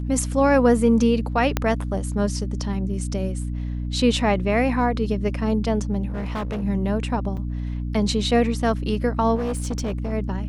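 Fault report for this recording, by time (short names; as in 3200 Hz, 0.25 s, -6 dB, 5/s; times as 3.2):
hum 60 Hz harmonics 5 -27 dBFS
1.57 pop -6 dBFS
6.08–6.64 clipped -24 dBFS
7.37 gap 4.9 ms
9.35–10.13 clipped -21.5 dBFS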